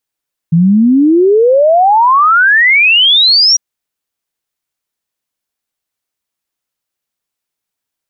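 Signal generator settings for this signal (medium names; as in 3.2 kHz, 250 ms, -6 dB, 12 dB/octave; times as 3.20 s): log sweep 160 Hz -> 5.8 kHz 3.05 s -4.5 dBFS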